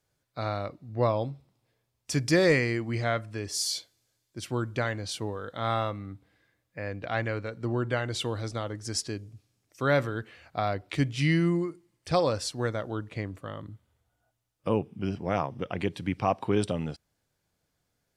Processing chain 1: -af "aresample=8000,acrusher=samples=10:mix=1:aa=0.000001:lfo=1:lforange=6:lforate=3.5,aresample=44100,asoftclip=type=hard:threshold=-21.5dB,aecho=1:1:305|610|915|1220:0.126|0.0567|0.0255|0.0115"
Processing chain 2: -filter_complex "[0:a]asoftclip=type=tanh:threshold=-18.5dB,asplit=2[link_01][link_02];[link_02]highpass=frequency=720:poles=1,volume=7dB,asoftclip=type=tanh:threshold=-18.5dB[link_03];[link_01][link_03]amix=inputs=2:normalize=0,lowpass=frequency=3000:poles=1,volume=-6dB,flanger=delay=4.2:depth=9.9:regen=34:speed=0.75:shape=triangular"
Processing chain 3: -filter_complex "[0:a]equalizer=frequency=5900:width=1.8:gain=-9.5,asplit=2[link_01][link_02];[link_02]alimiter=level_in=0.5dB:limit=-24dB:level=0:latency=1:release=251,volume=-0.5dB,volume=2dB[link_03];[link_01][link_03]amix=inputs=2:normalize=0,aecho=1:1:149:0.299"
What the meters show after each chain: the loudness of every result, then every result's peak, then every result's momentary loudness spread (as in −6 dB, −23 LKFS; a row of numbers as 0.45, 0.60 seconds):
−32.0, −37.0, −26.0 LKFS; −20.0, −20.5, −8.5 dBFS; 16, 12, 13 LU